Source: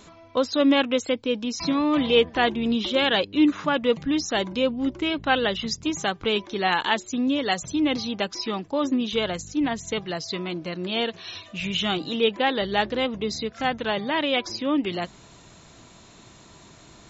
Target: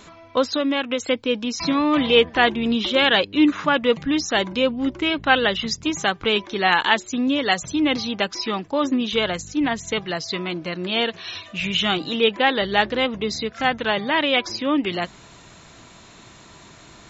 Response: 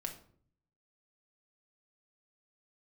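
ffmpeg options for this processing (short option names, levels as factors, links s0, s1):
-filter_complex "[0:a]equalizer=f=1800:w=0.69:g=4.5,asettb=1/sr,asplit=3[s0][s1][s2];[s0]atrim=end=0.534[s3];[s1]atrim=start=0.53:end=1,asetpts=PTS-STARTPTS,afade=t=in:d=0.004:c=qsin,afade=t=out:st=0.466:d=0.004:c=qsin,acompressor=threshold=0.0891:ratio=6[s4];[s2]atrim=start=0.996[s5];[s3][s4]acrossfade=d=0.004:c1=hsin:c2=qsin[s6];[s6][s5]acrossfade=d=0.004:c1=qsin:c2=hsin,volume=1.26"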